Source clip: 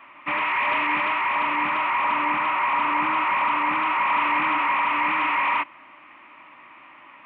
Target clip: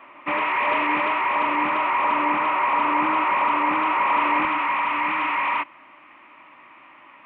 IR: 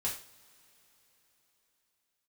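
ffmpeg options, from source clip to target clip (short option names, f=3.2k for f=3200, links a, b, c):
-af "asetnsamples=n=441:p=0,asendcmd='4.45 equalizer g 2.5',equalizer=f=450:t=o:w=1.7:g=9.5,volume=-1.5dB"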